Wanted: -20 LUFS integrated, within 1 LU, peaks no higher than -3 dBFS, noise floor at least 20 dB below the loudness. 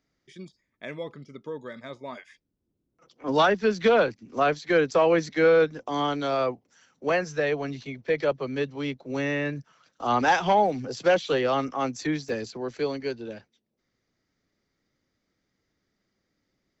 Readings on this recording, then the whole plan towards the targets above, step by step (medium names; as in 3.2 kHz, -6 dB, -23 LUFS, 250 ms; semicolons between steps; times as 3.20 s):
dropouts 1; longest dropout 1.9 ms; loudness -25.0 LUFS; peak level -11.0 dBFS; loudness target -20.0 LUFS
-> interpolate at 12.29 s, 1.9 ms; trim +5 dB